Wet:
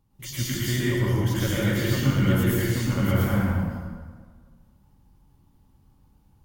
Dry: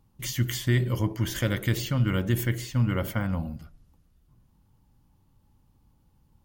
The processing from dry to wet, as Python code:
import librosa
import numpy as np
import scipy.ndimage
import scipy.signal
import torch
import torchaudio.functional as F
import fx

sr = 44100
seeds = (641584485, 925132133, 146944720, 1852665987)

y = fx.law_mismatch(x, sr, coded='mu', at=(1.91, 3.37))
y = fx.rev_plate(y, sr, seeds[0], rt60_s=1.6, hf_ratio=0.65, predelay_ms=95, drr_db=-7.5)
y = y * 10.0 ** (-4.5 / 20.0)